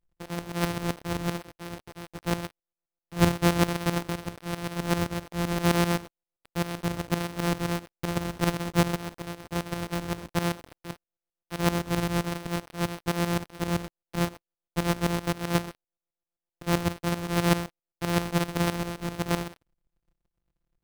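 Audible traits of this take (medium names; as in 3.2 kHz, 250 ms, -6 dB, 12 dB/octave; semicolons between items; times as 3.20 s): a buzz of ramps at a fixed pitch in blocks of 256 samples; tremolo saw up 7.7 Hz, depth 80%; aliases and images of a low sample rate 7 kHz, jitter 0%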